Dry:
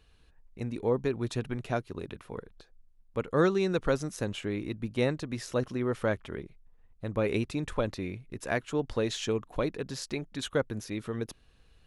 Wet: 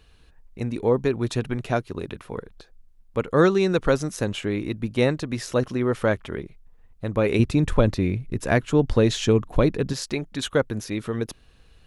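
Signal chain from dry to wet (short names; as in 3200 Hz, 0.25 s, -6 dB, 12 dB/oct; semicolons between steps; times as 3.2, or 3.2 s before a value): 7.39–9.93 low shelf 280 Hz +9.5 dB; gain +7 dB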